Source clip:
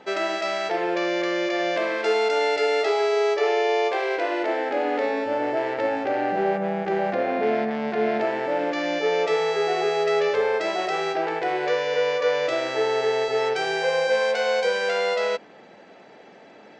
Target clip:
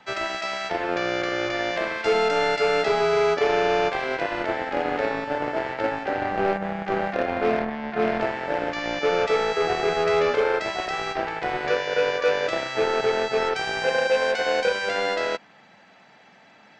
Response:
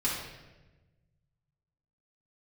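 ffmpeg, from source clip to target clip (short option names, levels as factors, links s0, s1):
-filter_complex "[0:a]asettb=1/sr,asplit=3[s0][s1][s2];[s0]atrim=end=7.594[s3];[s1]atrim=start=7.59:end=8.01,asetpts=PTS-STARTPTS,afade=t=in:d=0.004:c=qsin,afade=t=out:st=0.416:d=0.004:c=qsin,highshelf=f=4900:g=-12[s4];[s2]atrim=start=8.006[s5];[s3][s4]acrossfade=d=0.004:c1=hsin:c2=qsin[s6];[s6][s5]acrossfade=d=0.004:c1=qsin:c2=hsin,acrossover=split=240|700[s7][s8][s9];[s8]acrusher=bits=3:mix=0:aa=0.5[s10];[s7][s10][s9]amix=inputs=3:normalize=0"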